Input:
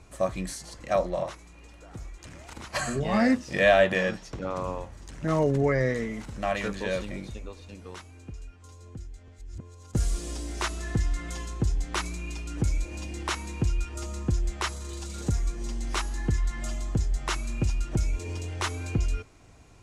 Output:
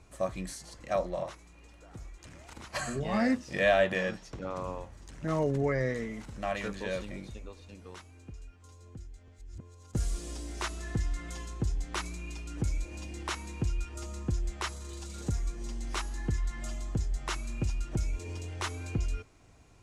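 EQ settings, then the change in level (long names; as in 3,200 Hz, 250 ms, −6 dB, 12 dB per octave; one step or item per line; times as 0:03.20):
no EQ move
−5.0 dB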